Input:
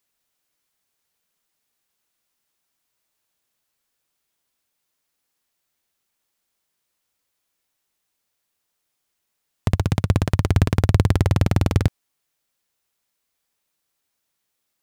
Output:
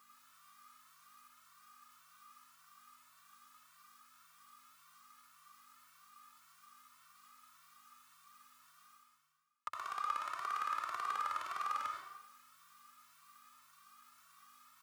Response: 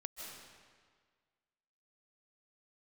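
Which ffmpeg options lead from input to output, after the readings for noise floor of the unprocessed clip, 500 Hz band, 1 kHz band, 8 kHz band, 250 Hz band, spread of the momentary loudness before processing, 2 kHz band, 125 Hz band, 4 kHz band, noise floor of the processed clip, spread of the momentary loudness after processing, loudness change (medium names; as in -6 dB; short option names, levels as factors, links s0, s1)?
-77 dBFS, -29.5 dB, -3.0 dB, -15.0 dB, under -40 dB, 6 LU, -11.5 dB, under -40 dB, -15.5 dB, -66 dBFS, 11 LU, -19.0 dB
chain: -filter_complex "[0:a]aeval=exprs='val(0)+0.002*(sin(2*PI*50*n/s)+sin(2*PI*2*50*n/s)/2+sin(2*PI*3*50*n/s)/3+sin(2*PI*4*50*n/s)/4+sin(2*PI*5*50*n/s)/5)':c=same,highpass=f=1200:t=q:w=14,areverse,acompressor=mode=upward:threshold=0.0631:ratio=2.5,areverse[s0];[1:a]atrim=start_sample=2205,asetrate=83790,aresample=44100[s1];[s0][s1]afir=irnorm=-1:irlink=0,asplit=2[s2][s3];[s3]adelay=2.1,afreqshift=1.8[s4];[s2][s4]amix=inputs=2:normalize=1,volume=0.473"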